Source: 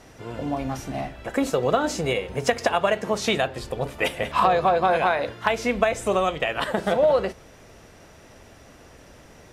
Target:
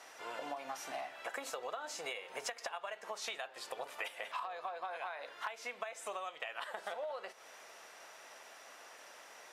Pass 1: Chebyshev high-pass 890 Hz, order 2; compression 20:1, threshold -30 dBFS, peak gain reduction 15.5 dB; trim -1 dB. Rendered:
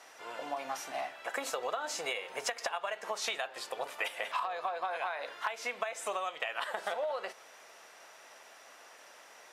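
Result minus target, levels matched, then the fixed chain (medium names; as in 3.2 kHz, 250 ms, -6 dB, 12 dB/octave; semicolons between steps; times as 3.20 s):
compression: peak gain reduction -6.5 dB
Chebyshev high-pass 890 Hz, order 2; compression 20:1, threshold -37 dBFS, peak gain reduction 22 dB; trim -1 dB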